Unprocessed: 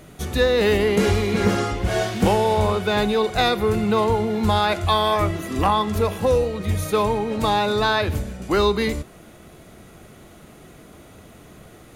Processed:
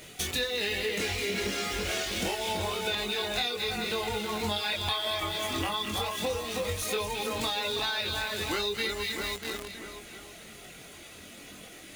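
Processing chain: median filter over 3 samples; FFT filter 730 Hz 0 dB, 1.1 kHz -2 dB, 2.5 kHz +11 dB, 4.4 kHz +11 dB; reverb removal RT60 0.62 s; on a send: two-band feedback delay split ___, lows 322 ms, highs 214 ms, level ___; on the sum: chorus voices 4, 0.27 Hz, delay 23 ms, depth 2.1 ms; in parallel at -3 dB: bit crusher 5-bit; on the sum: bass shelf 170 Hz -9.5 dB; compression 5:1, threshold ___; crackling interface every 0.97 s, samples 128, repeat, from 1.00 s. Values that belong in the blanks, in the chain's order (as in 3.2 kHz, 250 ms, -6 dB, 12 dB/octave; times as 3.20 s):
1.7 kHz, -6 dB, -30 dBFS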